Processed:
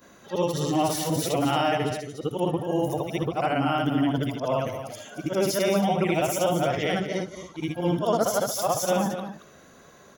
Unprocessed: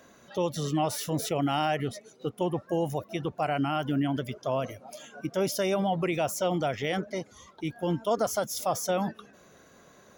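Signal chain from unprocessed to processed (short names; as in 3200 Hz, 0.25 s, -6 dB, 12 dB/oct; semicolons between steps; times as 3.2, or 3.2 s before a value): short-time reversal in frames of 0.162 s; echo 0.225 s -10 dB; gain +7 dB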